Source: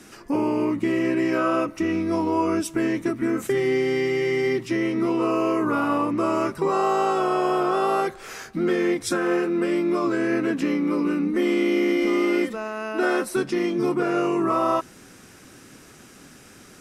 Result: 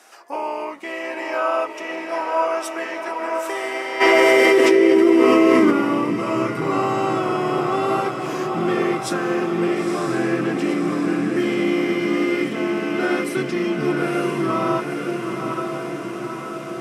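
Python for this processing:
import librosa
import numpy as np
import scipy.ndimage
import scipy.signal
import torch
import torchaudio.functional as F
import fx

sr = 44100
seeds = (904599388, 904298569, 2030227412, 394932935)

y = fx.echo_diffused(x, sr, ms=942, feedback_pct=65, wet_db=-4.5)
y = fx.filter_sweep_highpass(y, sr, from_hz=710.0, to_hz=130.0, start_s=3.99, end_s=6.46, q=2.6)
y = fx.dynamic_eq(y, sr, hz=2700.0, q=0.92, threshold_db=-41.0, ratio=4.0, max_db=4)
y = fx.env_flatten(y, sr, amount_pct=100, at=(4.0, 5.7), fade=0.02)
y = y * 10.0 ** (-2.0 / 20.0)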